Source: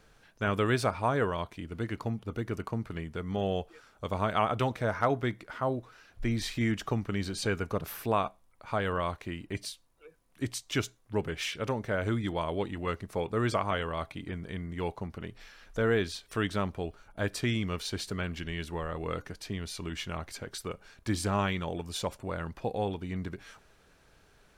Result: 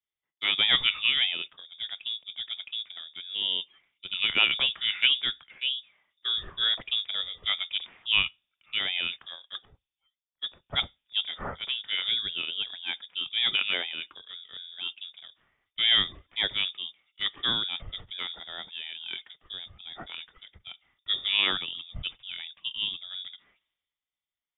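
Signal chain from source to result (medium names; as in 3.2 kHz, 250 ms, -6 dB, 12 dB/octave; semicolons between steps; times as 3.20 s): high-pass 59 Hz 24 dB/octave; frequency inversion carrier 3.6 kHz; three bands expanded up and down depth 100%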